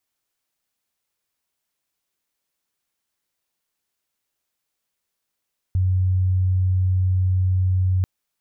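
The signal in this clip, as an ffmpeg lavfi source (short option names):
-f lavfi -i "aevalsrc='0.158*sin(2*PI*92.7*t)':d=2.29:s=44100"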